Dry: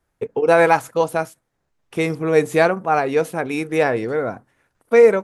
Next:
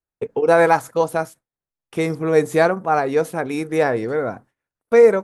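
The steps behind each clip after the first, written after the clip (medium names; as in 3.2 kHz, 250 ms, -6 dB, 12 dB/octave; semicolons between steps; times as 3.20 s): gate with hold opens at -34 dBFS; dynamic bell 2.7 kHz, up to -7 dB, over -40 dBFS, Q 2.3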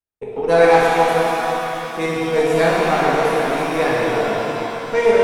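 dynamic bell 3.2 kHz, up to +6 dB, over -34 dBFS, Q 0.84; Chebyshev shaper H 6 -22 dB, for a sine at 0 dBFS; pitch-shifted reverb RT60 3.5 s, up +7 st, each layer -8 dB, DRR -6.5 dB; trim -7 dB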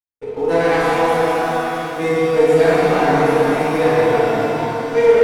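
waveshaping leveller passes 2; FDN reverb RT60 1 s, low-frequency decay 1.5×, high-frequency decay 0.4×, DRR -4.5 dB; trim -12 dB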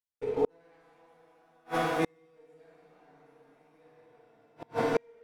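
inverted gate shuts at -10 dBFS, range -40 dB; trim -5 dB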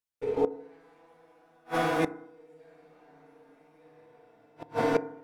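FDN reverb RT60 0.79 s, low-frequency decay 1×, high-frequency decay 0.25×, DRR 15 dB; trim +1 dB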